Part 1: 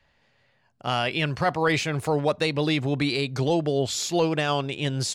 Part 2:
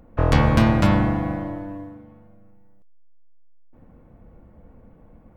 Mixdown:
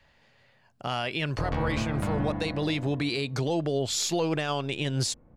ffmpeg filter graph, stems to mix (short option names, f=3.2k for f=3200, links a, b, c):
-filter_complex "[0:a]alimiter=limit=-17.5dB:level=0:latency=1:release=149,volume=3dB[a];[1:a]lowpass=5.5k,highshelf=f=4.2k:g=-9,adelay=1200,volume=-4.5dB[b];[a][b]amix=inputs=2:normalize=0,alimiter=limit=-18dB:level=0:latency=1:release=460"